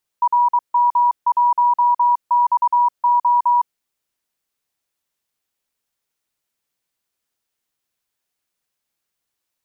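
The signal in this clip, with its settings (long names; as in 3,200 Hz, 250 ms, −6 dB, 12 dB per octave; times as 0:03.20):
Morse code "RM1XO" 23 words per minute 967 Hz −11.5 dBFS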